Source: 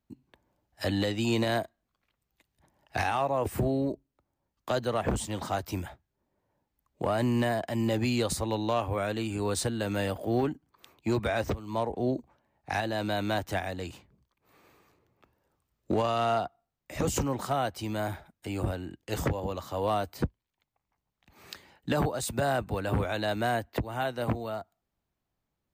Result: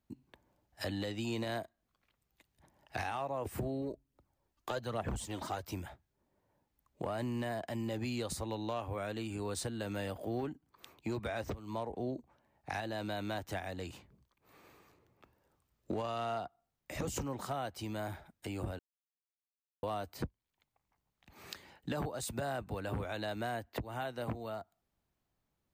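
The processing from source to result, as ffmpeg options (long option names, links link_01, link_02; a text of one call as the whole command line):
ffmpeg -i in.wav -filter_complex "[0:a]asplit=3[link_01][link_02][link_03];[link_01]afade=type=out:start_time=3.81:duration=0.02[link_04];[link_02]aphaser=in_gain=1:out_gain=1:delay=3.4:decay=0.49:speed=1.2:type=triangular,afade=type=in:start_time=3.81:duration=0.02,afade=type=out:start_time=5.62:duration=0.02[link_05];[link_03]afade=type=in:start_time=5.62:duration=0.02[link_06];[link_04][link_05][link_06]amix=inputs=3:normalize=0,asplit=3[link_07][link_08][link_09];[link_07]atrim=end=18.79,asetpts=PTS-STARTPTS,afade=type=out:start_time=18.786:duration=0.004:curve=hsin[link_10];[link_08]atrim=start=18.79:end=19.83,asetpts=PTS-STARTPTS,volume=0[link_11];[link_09]atrim=start=19.83,asetpts=PTS-STARTPTS,afade=type=in:duration=0.004:curve=hsin[link_12];[link_10][link_11][link_12]concat=n=3:v=0:a=1,acompressor=threshold=-42dB:ratio=2" out.wav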